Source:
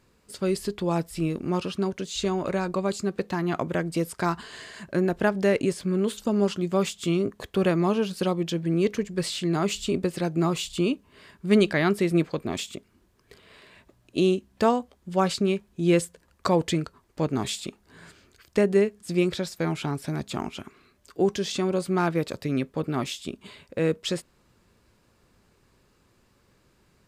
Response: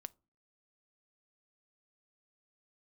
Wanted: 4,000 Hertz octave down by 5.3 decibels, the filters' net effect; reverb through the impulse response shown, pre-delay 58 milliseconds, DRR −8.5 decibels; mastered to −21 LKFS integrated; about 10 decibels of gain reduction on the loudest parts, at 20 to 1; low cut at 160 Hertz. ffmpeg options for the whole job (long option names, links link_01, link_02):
-filter_complex "[0:a]highpass=160,equalizer=frequency=4000:width_type=o:gain=-7,acompressor=threshold=-25dB:ratio=20,asplit=2[link_01][link_02];[1:a]atrim=start_sample=2205,adelay=58[link_03];[link_02][link_03]afir=irnorm=-1:irlink=0,volume=13.5dB[link_04];[link_01][link_04]amix=inputs=2:normalize=0,volume=2.5dB"